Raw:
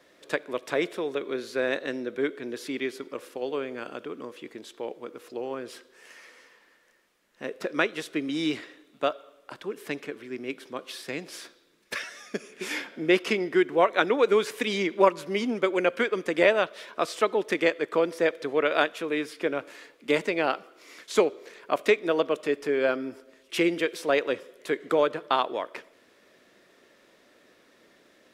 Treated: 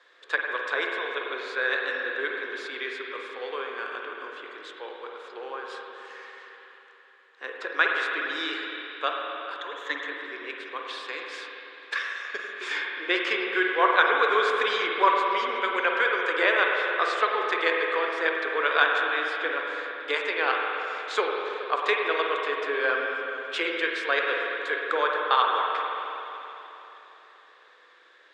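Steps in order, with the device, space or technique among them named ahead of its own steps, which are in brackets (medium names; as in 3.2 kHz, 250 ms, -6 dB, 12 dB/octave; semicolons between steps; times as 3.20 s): 9.60–10.07 s: rippled EQ curve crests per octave 1.1, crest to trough 15 dB; phone speaker on a table (cabinet simulation 440–7000 Hz, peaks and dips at 620 Hz -9 dB, 1.1 kHz +7 dB, 1.6 kHz +9 dB, 3.6 kHz +6 dB, 5.8 kHz -6 dB); spring tank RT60 3.5 s, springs 46/52 ms, chirp 80 ms, DRR -0.5 dB; trim -2 dB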